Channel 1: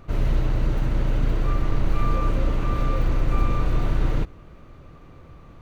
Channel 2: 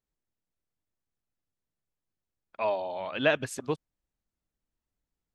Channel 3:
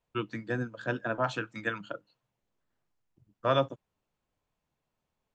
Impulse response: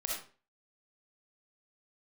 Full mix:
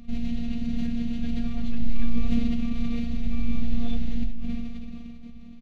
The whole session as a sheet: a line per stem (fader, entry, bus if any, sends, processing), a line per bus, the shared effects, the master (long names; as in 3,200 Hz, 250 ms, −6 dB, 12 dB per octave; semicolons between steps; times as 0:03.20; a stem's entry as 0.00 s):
+1.0 dB, 0.00 s, bus A, send −9 dB, no processing
muted
−6.5 dB, 0.35 s, no bus, no send, no processing
bus A: 0.0 dB, brickwall limiter −17.5 dBFS, peak gain reduction 8.5 dB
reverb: on, RT60 0.40 s, pre-delay 20 ms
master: drawn EQ curve 150 Hz 0 dB, 220 Hz +10 dB, 350 Hz −27 dB, 600 Hz −8 dB, 950 Hz −25 dB, 1,500 Hz −19 dB, 2,300 Hz −6 dB, 3,900 Hz −2 dB, 7,100 Hz −7 dB, 10,000 Hz −16 dB; phases set to zero 234 Hz; level that may fall only so fast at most 23 dB per second